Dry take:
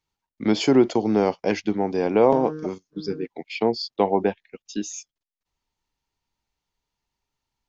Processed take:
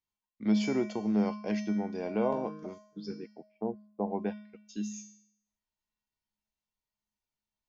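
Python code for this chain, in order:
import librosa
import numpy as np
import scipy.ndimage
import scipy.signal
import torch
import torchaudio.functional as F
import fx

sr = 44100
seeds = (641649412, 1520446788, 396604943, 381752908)

y = fx.lowpass(x, sr, hz=1000.0, slope=24, at=(3.34, 4.11))
y = fx.comb_fb(y, sr, f0_hz=210.0, decay_s=0.65, harmonics='odd', damping=0.0, mix_pct=90)
y = F.gain(torch.from_numpy(y), 5.0).numpy()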